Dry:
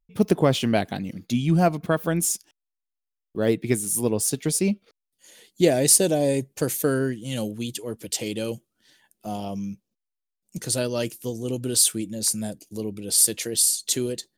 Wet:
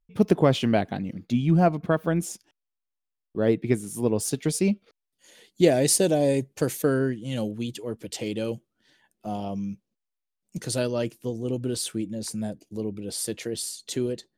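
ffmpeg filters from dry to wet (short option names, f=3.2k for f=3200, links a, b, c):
-af "asetnsamples=n=441:p=0,asendcmd='0.75 lowpass f 1900;4.16 lowpass f 4700;6.82 lowpass f 2500;9.69 lowpass f 4100;10.91 lowpass f 1700',lowpass=f=3.5k:p=1"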